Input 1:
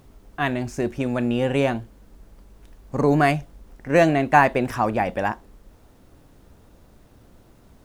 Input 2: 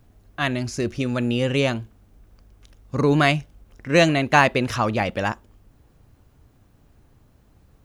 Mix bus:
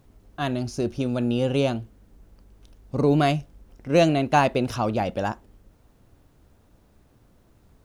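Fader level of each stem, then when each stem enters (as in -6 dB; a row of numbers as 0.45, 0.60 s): -8.0, -6.0 dB; 0.00, 0.00 s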